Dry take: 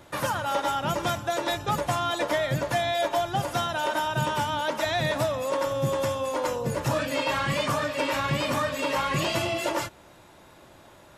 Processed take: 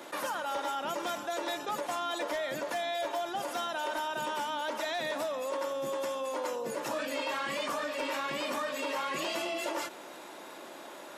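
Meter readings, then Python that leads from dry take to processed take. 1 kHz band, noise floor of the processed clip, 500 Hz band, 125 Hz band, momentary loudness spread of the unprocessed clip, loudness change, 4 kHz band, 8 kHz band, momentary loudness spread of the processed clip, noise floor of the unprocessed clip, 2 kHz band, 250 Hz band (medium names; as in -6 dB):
-6.5 dB, -47 dBFS, -6.5 dB, -25.5 dB, 2 LU, -7.0 dB, -6.5 dB, -6.0 dB, 3 LU, -52 dBFS, -6.5 dB, -8.5 dB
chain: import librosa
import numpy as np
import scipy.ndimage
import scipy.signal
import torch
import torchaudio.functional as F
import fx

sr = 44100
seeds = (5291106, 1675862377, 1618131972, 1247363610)

y = scipy.signal.sosfilt(scipy.signal.butter(4, 250.0, 'highpass', fs=sr, output='sos'), x)
y = 10.0 ** (-17.5 / 20.0) * (np.abs((y / 10.0 ** (-17.5 / 20.0) + 3.0) % 4.0 - 2.0) - 1.0)
y = fx.env_flatten(y, sr, amount_pct=50)
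y = F.gain(torch.from_numpy(y), -9.0).numpy()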